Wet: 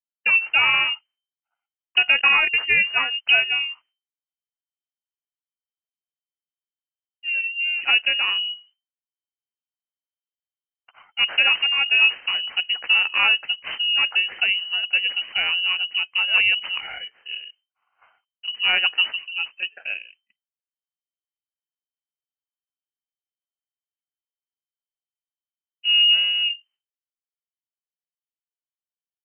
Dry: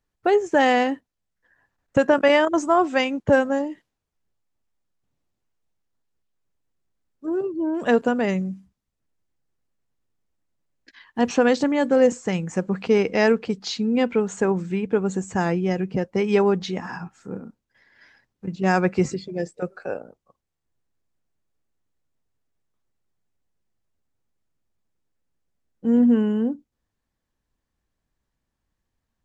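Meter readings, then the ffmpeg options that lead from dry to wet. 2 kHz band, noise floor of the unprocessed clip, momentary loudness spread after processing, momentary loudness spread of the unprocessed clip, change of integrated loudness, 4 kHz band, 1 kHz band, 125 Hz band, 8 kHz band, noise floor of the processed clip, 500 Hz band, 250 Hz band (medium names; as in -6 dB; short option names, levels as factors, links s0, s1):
+10.0 dB, -81 dBFS, 15 LU, 15 LU, +3.0 dB, +18.5 dB, -6.5 dB, under -20 dB, under -35 dB, under -85 dBFS, -23.5 dB, under -30 dB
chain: -af "agate=range=0.0224:threshold=0.00355:ratio=3:detection=peak,acrusher=samples=11:mix=1:aa=0.000001,lowpass=f=2600:t=q:w=0.5098,lowpass=f=2600:t=q:w=0.6013,lowpass=f=2600:t=q:w=0.9,lowpass=f=2600:t=q:w=2.563,afreqshift=-3100"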